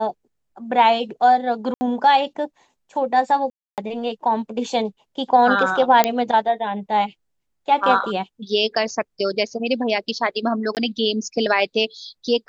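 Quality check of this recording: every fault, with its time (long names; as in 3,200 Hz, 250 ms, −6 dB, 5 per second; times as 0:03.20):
0:01.74–0:01.81: drop-out 70 ms
0:03.50–0:03.78: drop-out 278 ms
0:06.04: click −1 dBFS
0:10.75–0:10.77: drop-out 18 ms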